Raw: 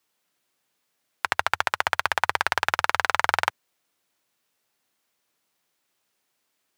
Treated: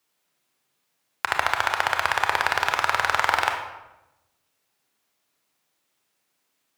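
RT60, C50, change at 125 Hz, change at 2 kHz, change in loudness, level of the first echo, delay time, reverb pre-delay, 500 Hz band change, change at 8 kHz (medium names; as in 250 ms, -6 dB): 1.0 s, 5.5 dB, +1.5 dB, +1.5 dB, +1.5 dB, no echo, no echo, 25 ms, +1.5 dB, +1.0 dB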